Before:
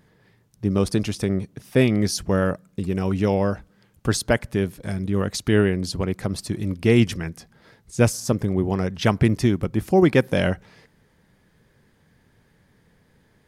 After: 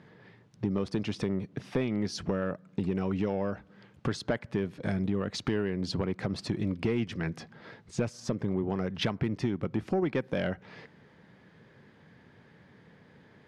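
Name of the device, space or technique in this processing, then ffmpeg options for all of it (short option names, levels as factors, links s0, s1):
AM radio: -af "highpass=120,lowpass=3600,acompressor=threshold=0.0316:ratio=6,asoftclip=type=tanh:threshold=0.075,volume=1.68"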